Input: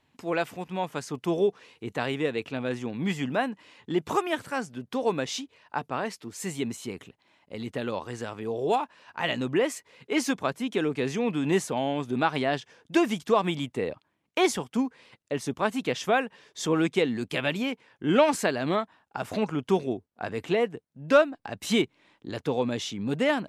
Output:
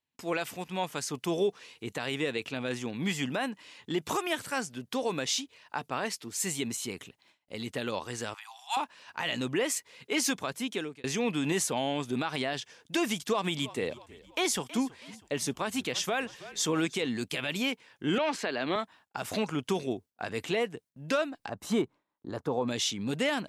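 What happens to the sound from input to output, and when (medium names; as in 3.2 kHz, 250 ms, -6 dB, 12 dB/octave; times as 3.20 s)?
8.34–8.77 s: steep high-pass 780 Hz 96 dB/octave
10.58–11.04 s: fade out
13.12–17.07 s: frequency-shifting echo 322 ms, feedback 48%, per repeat -46 Hz, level -21.5 dB
18.18–18.76 s: three-band isolator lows -12 dB, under 210 Hz, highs -22 dB, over 4.5 kHz
21.49–22.68 s: resonant high shelf 1.7 kHz -12.5 dB, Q 1.5
whole clip: gate with hold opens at -51 dBFS; treble shelf 2.4 kHz +11 dB; peak limiter -16 dBFS; trim -3 dB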